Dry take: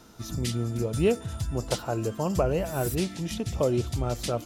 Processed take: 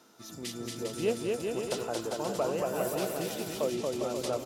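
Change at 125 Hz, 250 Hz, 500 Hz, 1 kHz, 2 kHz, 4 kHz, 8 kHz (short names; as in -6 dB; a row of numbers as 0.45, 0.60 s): -14.5, -6.0, -2.5, -2.5, -2.0, -2.5, -2.5 dB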